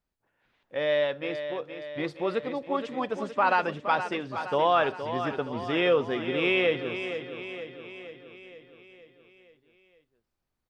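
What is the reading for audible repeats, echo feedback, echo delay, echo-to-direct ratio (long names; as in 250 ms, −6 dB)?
6, 57%, 469 ms, −8.0 dB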